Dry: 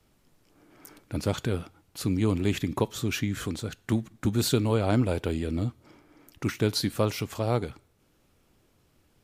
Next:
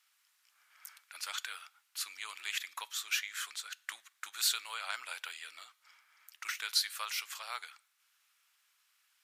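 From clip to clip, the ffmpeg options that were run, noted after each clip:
-af "highpass=f=1.3k:w=0.5412,highpass=f=1.3k:w=1.3066"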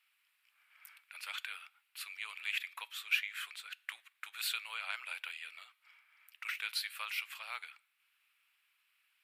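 -af "equalizer=f=250:t=o:w=0.67:g=-9,equalizer=f=2.5k:t=o:w=0.67:g=10,equalizer=f=6.3k:t=o:w=0.67:g=-12,volume=-5dB"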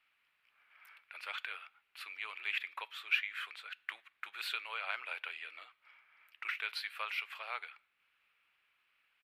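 -af "firequalizer=gain_entry='entry(440,0);entry(890,-7);entry(7200,-24)':delay=0.05:min_phase=1,volume=11.5dB"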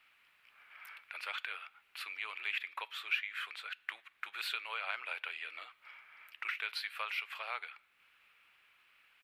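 -af "acompressor=threshold=-58dB:ratio=1.5,volume=8.5dB"

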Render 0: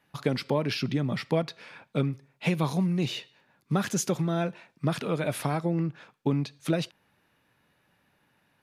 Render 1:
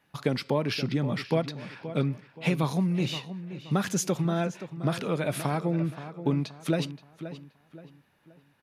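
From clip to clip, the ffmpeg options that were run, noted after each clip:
-filter_complex "[0:a]asplit=2[a][b];[b]adelay=525,lowpass=f=3k:p=1,volume=-12dB,asplit=2[c][d];[d]adelay=525,lowpass=f=3k:p=1,volume=0.37,asplit=2[e][f];[f]adelay=525,lowpass=f=3k:p=1,volume=0.37,asplit=2[g][h];[h]adelay=525,lowpass=f=3k:p=1,volume=0.37[i];[a][c][e][g][i]amix=inputs=5:normalize=0"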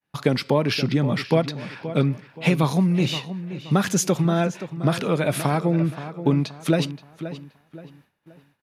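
-af "agate=range=-33dB:threshold=-57dB:ratio=3:detection=peak,volume=6.5dB"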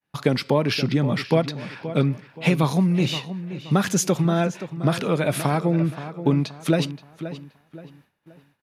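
-af anull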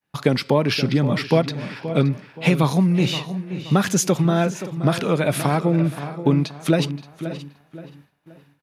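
-af "aecho=1:1:574:0.141,volume=2dB"

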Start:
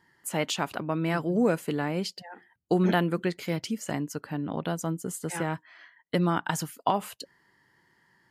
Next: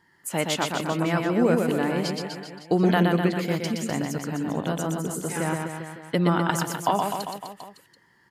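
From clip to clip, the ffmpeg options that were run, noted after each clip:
-af "aecho=1:1:120|252|397.2|556.9|732.6:0.631|0.398|0.251|0.158|0.1,volume=2dB"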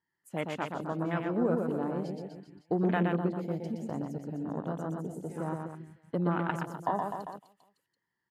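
-af "afwtdn=0.0355,volume=-7.5dB"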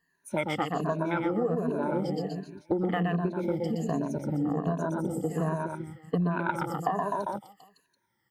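-af "afftfilt=real='re*pow(10,17/40*sin(2*PI*(1.5*log(max(b,1)*sr/1024/100)/log(2)-(-1.3)*(pts-256)/sr)))':imag='im*pow(10,17/40*sin(2*PI*(1.5*log(max(b,1)*sr/1024/100)/log(2)-(-1.3)*(pts-256)/sr)))':win_size=1024:overlap=0.75,acompressor=threshold=-32dB:ratio=6,volume=7dB"

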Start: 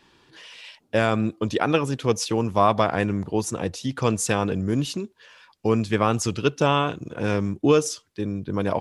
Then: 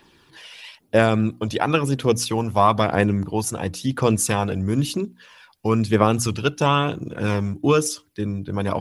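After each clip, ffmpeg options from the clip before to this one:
-af "aexciter=amount=3.1:drive=2.9:freq=9.8k,aphaser=in_gain=1:out_gain=1:delay=1.5:decay=0.38:speed=1:type=triangular,bandreject=f=60:t=h:w=6,bandreject=f=120:t=h:w=6,bandreject=f=180:t=h:w=6,bandreject=f=240:t=h:w=6,bandreject=f=300:t=h:w=6,volume=1.5dB"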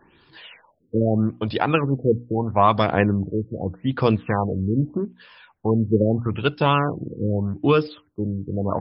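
-af "afftfilt=real='re*lt(b*sr/1024,510*pow(5400/510,0.5+0.5*sin(2*PI*0.8*pts/sr)))':imag='im*lt(b*sr/1024,510*pow(5400/510,0.5+0.5*sin(2*PI*0.8*pts/sr)))':win_size=1024:overlap=0.75"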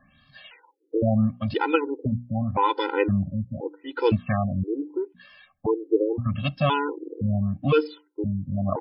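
-af "afftfilt=real='re*gt(sin(2*PI*0.97*pts/sr)*(1-2*mod(floor(b*sr/1024/260),2)),0)':imag='im*gt(sin(2*PI*0.97*pts/sr)*(1-2*mod(floor(b*sr/1024/260),2)),0)':win_size=1024:overlap=0.75"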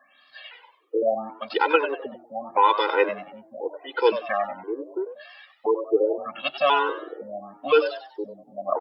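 -filter_complex "[0:a]highpass=f=410:w=0.5412,highpass=f=410:w=1.3066,asplit=2[a][b];[b]asplit=4[c][d][e][f];[c]adelay=95,afreqshift=110,volume=-11dB[g];[d]adelay=190,afreqshift=220,volume=-20.1dB[h];[e]adelay=285,afreqshift=330,volume=-29.2dB[i];[f]adelay=380,afreqshift=440,volume=-38.4dB[j];[g][h][i][j]amix=inputs=4:normalize=0[k];[a][k]amix=inputs=2:normalize=0,volume=4dB"

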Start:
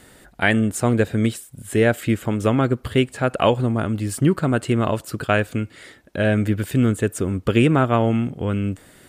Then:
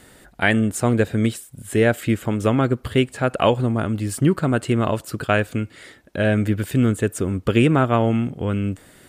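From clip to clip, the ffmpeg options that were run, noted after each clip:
-af anull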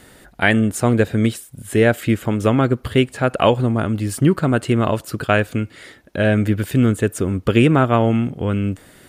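-af "equalizer=f=7.9k:t=o:w=0.25:g=-3.5,volume=2.5dB"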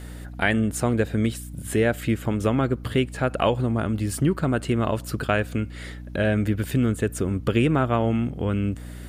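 -af "acompressor=threshold=-29dB:ratio=1.5,aeval=exprs='val(0)+0.0158*(sin(2*PI*60*n/s)+sin(2*PI*2*60*n/s)/2+sin(2*PI*3*60*n/s)/3+sin(2*PI*4*60*n/s)/4+sin(2*PI*5*60*n/s)/5)':c=same"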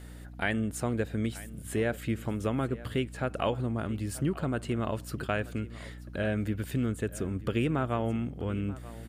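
-af "aecho=1:1:934:0.126,volume=-8dB"

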